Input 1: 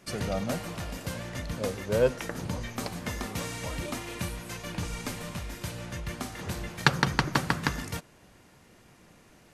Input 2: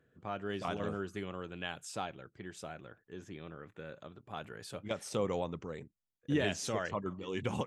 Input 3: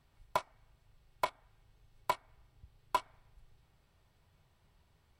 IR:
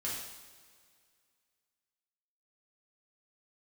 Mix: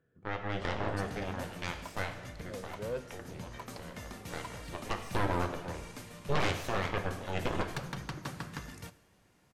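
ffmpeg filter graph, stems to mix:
-filter_complex "[0:a]asoftclip=type=tanh:threshold=0.106,adelay=900,volume=0.266,asplit=2[s0][s1];[s1]volume=0.158[s2];[1:a]highshelf=f=3300:g=-9.5,aeval=exprs='0.1*(cos(1*acos(clip(val(0)/0.1,-1,1)))-cos(1*PI/2))+0.0398*(cos(3*acos(clip(val(0)/0.1,-1,1)))-cos(3*PI/2))+0.0398*(cos(6*acos(clip(val(0)/0.1,-1,1)))-cos(6*PI/2))+0.00631*(cos(7*acos(clip(val(0)/0.1,-1,1)))-cos(7*PI/2))':c=same,volume=0.75,asplit=2[s3][s4];[s4]volume=0.596[s5];[2:a]adelay=1500,volume=0.178[s6];[3:a]atrim=start_sample=2205[s7];[s2][s5]amix=inputs=2:normalize=0[s8];[s8][s7]afir=irnorm=-1:irlink=0[s9];[s0][s3][s6][s9]amix=inputs=4:normalize=0"

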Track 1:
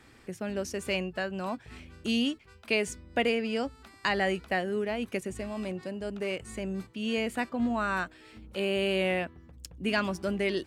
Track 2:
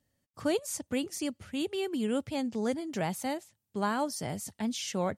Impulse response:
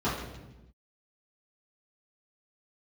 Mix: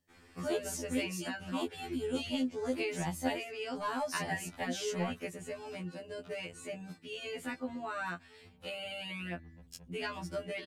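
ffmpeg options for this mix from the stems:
-filter_complex "[0:a]acompressor=threshold=0.0355:ratio=6,adelay=100,volume=0.891[s0];[1:a]asoftclip=type=tanh:threshold=0.0794,volume=0.841[s1];[s0][s1]amix=inputs=2:normalize=0,afftfilt=real='re*2*eq(mod(b,4),0)':imag='im*2*eq(mod(b,4),0)':win_size=2048:overlap=0.75"

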